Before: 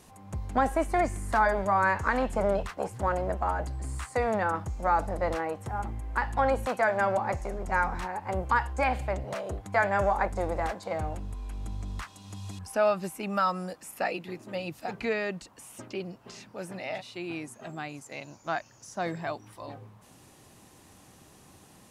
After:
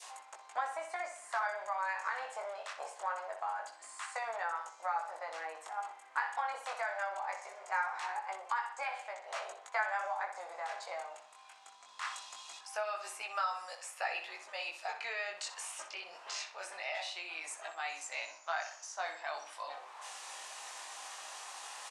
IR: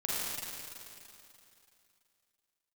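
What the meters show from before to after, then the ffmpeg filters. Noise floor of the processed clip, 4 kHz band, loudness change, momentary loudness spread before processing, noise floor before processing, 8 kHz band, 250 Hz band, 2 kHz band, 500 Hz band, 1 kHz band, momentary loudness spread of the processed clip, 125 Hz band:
-57 dBFS, +1.0 dB, -9.5 dB, 15 LU, -56 dBFS, +1.0 dB, under -30 dB, -6.0 dB, -14.5 dB, -8.0 dB, 9 LU, under -40 dB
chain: -filter_complex "[0:a]flanger=delay=17.5:depth=4.2:speed=0.22,areverse,acompressor=mode=upward:threshold=0.0282:ratio=2.5,areverse,lowpass=f=8900:w=0.5412,lowpass=f=8900:w=1.3066,asplit=2[s0][s1];[s1]adelay=62,lowpass=f=4600:p=1,volume=0.376,asplit=2[s2][s3];[s3]adelay=62,lowpass=f=4600:p=1,volume=0.41,asplit=2[s4][s5];[s5]adelay=62,lowpass=f=4600:p=1,volume=0.41,asplit=2[s6][s7];[s7]adelay=62,lowpass=f=4600:p=1,volume=0.41,asplit=2[s8][s9];[s9]adelay=62,lowpass=f=4600:p=1,volume=0.41[s10];[s0][s2][s4][s6][s8][s10]amix=inputs=6:normalize=0,acompressor=threshold=0.0316:ratio=4,highpass=f=760:w=0.5412,highpass=f=760:w=1.3066,adynamicequalizer=threshold=0.00355:dfrequency=1200:dqfactor=0.82:tfrequency=1200:tqfactor=0.82:attack=5:release=100:ratio=0.375:range=2.5:mode=cutabove:tftype=bell,volume=1.26"

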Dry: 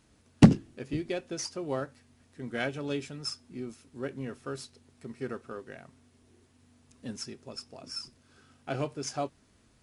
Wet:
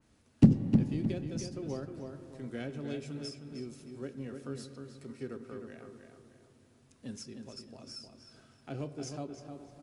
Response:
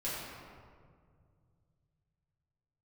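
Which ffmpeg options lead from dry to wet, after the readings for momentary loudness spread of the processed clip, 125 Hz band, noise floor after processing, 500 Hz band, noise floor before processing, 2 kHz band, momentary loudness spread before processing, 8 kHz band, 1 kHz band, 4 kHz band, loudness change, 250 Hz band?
19 LU, -1.5 dB, -65 dBFS, -5.5 dB, -65 dBFS, -11.5 dB, 13 LU, -7.5 dB, -11.0 dB, -8.5 dB, -2.5 dB, -2.0 dB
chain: -filter_complex "[0:a]asplit=2[s0][s1];[1:a]atrim=start_sample=2205,asetrate=36603,aresample=44100,highshelf=f=3600:g=-10.5[s2];[s1][s2]afir=irnorm=-1:irlink=0,volume=0.158[s3];[s0][s3]amix=inputs=2:normalize=0,acrossover=split=450[s4][s5];[s5]acompressor=threshold=0.00251:ratio=2[s6];[s4][s6]amix=inputs=2:normalize=0,asplit=2[s7][s8];[s8]adelay=309,lowpass=f=3400:p=1,volume=0.501,asplit=2[s9][s10];[s10]adelay=309,lowpass=f=3400:p=1,volume=0.38,asplit=2[s11][s12];[s12]adelay=309,lowpass=f=3400:p=1,volume=0.38,asplit=2[s13][s14];[s14]adelay=309,lowpass=f=3400:p=1,volume=0.38,asplit=2[s15][s16];[s16]adelay=309,lowpass=f=3400:p=1,volume=0.38[s17];[s9][s11][s13][s15][s17]amix=inputs=5:normalize=0[s18];[s7][s18]amix=inputs=2:normalize=0,adynamicequalizer=threshold=0.00141:dfrequency=2400:dqfactor=0.7:tfrequency=2400:tqfactor=0.7:attack=5:release=100:ratio=0.375:range=2.5:mode=boostabove:tftype=highshelf,volume=0.631"

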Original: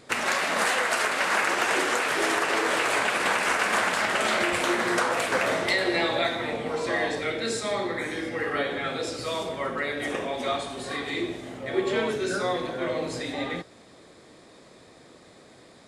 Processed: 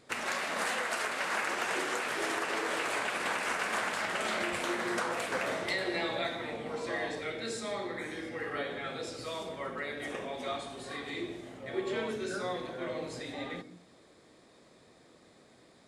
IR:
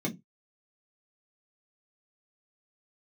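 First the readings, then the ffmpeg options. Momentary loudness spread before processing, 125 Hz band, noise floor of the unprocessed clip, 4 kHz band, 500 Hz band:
7 LU, -8.0 dB, -52 dBFS, -8.5 dB, -8.5 dB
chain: -filter_complex "[0:a]asplit=2[s0][s1];[1:a]atrim=start_sample=2205,adelay=123[s2];[s1][s2]afir=irnorm=-1:irlink=0,volume=0.0531[s3];[s0][s3]amix=inputs=2:normalize=0,volume=0.376"

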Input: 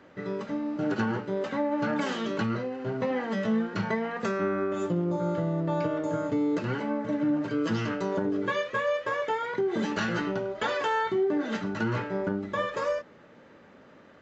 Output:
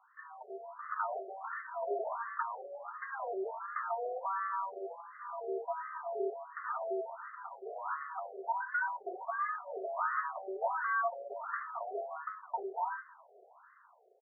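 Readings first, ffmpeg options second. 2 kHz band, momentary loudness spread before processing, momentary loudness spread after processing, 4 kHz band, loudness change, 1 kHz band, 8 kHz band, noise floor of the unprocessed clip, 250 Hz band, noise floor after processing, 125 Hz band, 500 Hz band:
-6.0 dB, 4 LU, 11 LU, under -40 dB, -9.0 dB, -2.5 dB, no reading, -54 dBFS, under -20 dB, -62 dBFS, under -40 dB, -10.5 dB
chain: -filter_complex "[0:a]dynaudnorm=f=140:g=9:m=2.24,highpass=f=510:t=q:w=0.5412,highpass=f=510:t=q:w=1.307,lowpass=f=2200:t=q:w=0.5176,lowpass=f=2200:t=q:w=0.7071,lowpass=f=2200:t=q:w=1.932,afreqshift=-200,asplit=2[s0][s1];[s1]asoftclip=type=tanh:threshold=0.0398,volume=0.501[s2];[s0][s2]amix=inputs=2:normalize=0,acrusher=bits=3:mode=log:mix=0:aa=0.000001,aecho=1:1:202:0.0841,afftfilt=real='re*between(b*sr/1024,520*pow(1500/520,0.5+0.5*sin(2*PI*1.4*pts/sr))/1.41,520*pow(1500/520,0.5+0.5*sin(2*PI*1.4*pts/sr))*1.41)':imag='im*between(b*sr/1024,520*pow(1500/520,0.5+0.5*sin(2*PI*1.4*pts/sr))/1.41,520*pow(1500/520,0.5+0.5*sin(2*PI*1.4*pts/sr))*1.41)':win_size=1024:overlap=0.75,volume=0.422"

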